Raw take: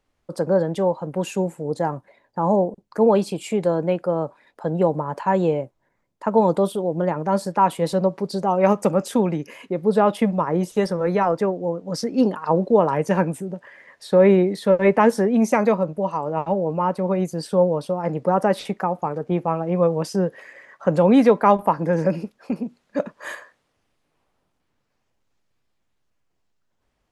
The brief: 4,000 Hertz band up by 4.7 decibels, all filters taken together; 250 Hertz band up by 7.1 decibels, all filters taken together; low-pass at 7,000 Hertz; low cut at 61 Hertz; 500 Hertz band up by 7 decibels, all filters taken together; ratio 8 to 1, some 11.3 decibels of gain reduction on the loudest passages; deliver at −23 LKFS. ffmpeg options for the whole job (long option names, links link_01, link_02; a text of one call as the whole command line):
ffmpeg -i in.wav -af "highpass=61,lowpass=7000,equalizer=frequency=250:width_type=o:gain=8,equalizer=frequency=500:width_type=o:gain=6,equalizer=frequency=4000:width_type=o:gain=6.5,acompressor=threshold=-14dB:ratio=8,volume=-2.5dB" out.wav